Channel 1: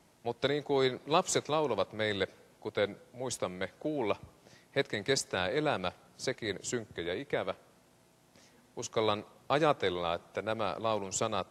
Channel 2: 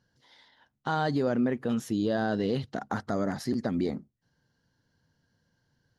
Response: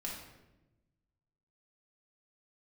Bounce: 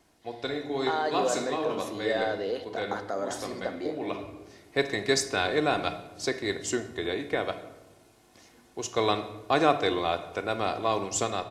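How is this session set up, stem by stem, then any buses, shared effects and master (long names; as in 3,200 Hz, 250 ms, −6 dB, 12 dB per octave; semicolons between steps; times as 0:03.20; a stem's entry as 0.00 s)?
−3.0 dB, 0.00 s, send −4.5 dB, comb filter 2.8 ms, depth 46%; automatic gain control gain up to 4.5 dB; automatic ducking −13 dB, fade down 0.70 s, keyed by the second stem
+2.5 dB, 0.00 s, send −5 dB, four-pole ladder high-pass 370 Hz, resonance 30%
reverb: on, RT60 1.0 s, pre-delay 4 ms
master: no processing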